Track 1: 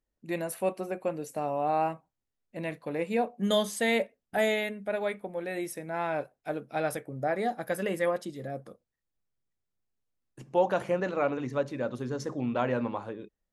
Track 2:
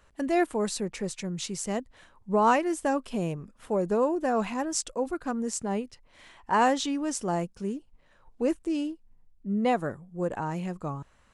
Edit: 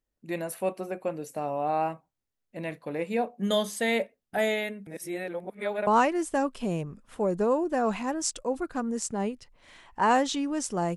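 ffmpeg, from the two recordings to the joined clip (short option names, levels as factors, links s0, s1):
-filter_complex "[0:a]apad=whole_dur=10.96,atrim=end=10.96,asplit=2[s0][s1];[s0]atrim=end=4.872[s2];[s1]atrim=start=4.868:end=5.872,asetpts=PTS-STARTPTS,areverse[s3];[1:a]atrim=start=2.378:end=7.47[s4];[s2][s3]acrossfade=d=0.004:c1=hsin:c2=hsin[s5];[s5][s4]acrossfade=d=0.004:c1=hsin:c2=hsin"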